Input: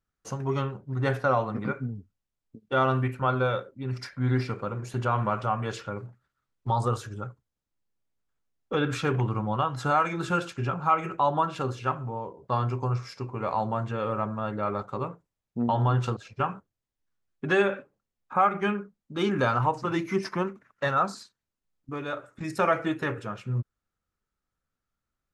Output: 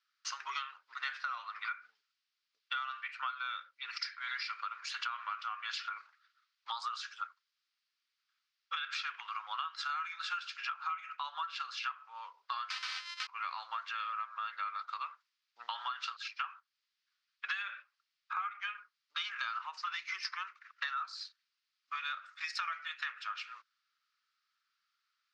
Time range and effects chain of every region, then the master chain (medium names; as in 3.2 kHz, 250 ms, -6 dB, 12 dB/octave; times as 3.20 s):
12.70–13.27 s: sorted samples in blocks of 128 samples + integer overflow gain 29 dB + comb 3.9 ms, depth 90%
whole clip: elliptic band-pass 1.2–4.9 kHz, stop band 80 dB; tilt EQ +4 dB/octave; compression 10:1, threshold -41 dBFS; trim +5.5 dB